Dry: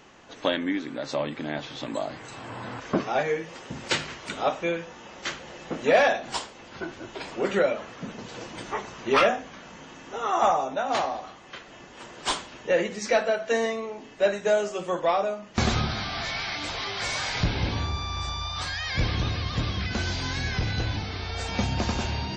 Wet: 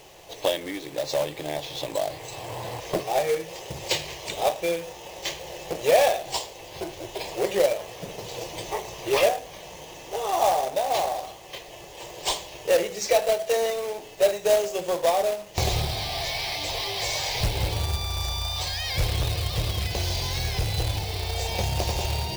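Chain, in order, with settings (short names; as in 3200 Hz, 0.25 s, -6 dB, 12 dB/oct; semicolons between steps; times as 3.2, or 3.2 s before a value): in parallel at +1.5 dB: compressor 12:1, threshold -31 dBFS, peak gain reduction 16.5 dB; on the sum: fixed phaser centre 580 Hz, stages 4; companded quantiser 4-bit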